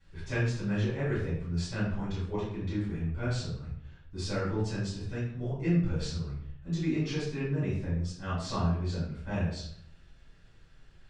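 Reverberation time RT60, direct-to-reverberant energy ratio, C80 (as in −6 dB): 0.65 s, −11.0 dB, 5.5 dB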